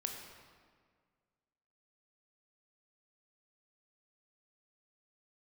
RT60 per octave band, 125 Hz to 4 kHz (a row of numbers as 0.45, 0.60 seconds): 2.0, 2.0, 1.8, 1.7, 1.5, 1.2 seconds